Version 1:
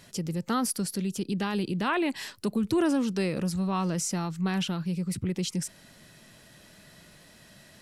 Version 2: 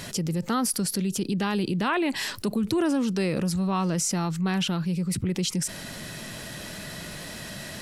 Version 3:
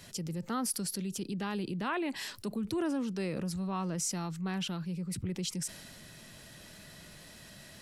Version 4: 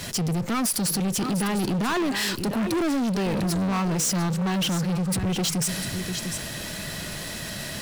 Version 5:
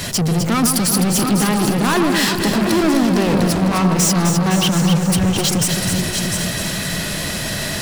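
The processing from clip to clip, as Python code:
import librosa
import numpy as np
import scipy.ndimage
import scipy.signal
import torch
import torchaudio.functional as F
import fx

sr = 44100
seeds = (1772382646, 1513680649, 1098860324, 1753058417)

y1 = fx.env_flatten(x, sr, amount_pct=50)
y2 = fx.band_widen(y1, sr, depth_pct=40)
y2 = y2 * librosa.db_to_amplitude(-9.0)
y3 = y2 + 10.0 ** (-13.0 / 20.0) * np.pad(y2, (int(699 * sr / 1000.0), 0))[:len(y2)]
y3 = fx.leveller(y3, sr, passes=5)
y4 = y3 + 0.5 * 10.0 ** (-35.5 / 20.0) * np.sign(y3)
y4 = fx.echo_alternate(y4, sr, ms=128, hz=1400.0, feedback_pct=81, wet_db=-5)
y4 = fx.end_taper(y4, sr, db_per_s=110.0)
y4 = y4 * librosa.db_to_amplitude(6.5)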